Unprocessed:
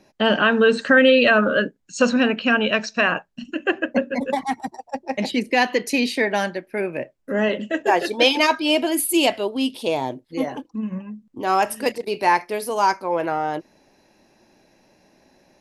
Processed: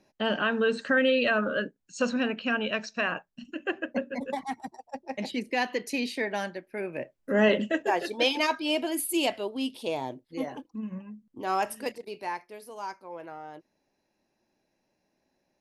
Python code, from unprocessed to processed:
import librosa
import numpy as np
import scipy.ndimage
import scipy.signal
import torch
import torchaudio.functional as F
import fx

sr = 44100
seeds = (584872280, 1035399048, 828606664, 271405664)

y = fx.gain(x, sr, db=fx.line((6.8, -9.5), (7.58, 1.0), (7.91, -8.5), (11.69, -8.5), (12.47, -18.5)))